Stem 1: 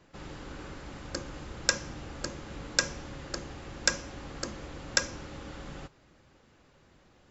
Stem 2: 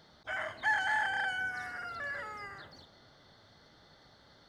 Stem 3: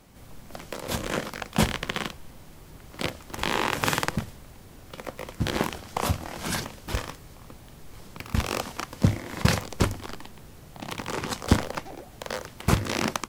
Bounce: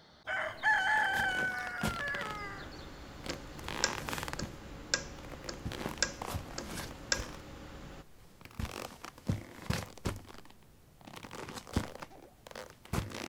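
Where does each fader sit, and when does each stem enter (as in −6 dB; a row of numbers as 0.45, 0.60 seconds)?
−5.5, +1.5, −13.0 decibels; 2.15, 0.00, 0.25 seconds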